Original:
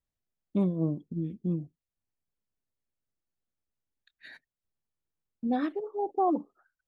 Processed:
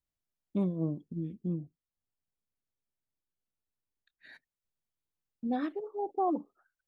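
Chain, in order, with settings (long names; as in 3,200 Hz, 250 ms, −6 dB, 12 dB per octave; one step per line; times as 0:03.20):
0:01.48–0:04.29: high-shelf EQ 2,100 Hz −7.5 dB
level −3.5 dB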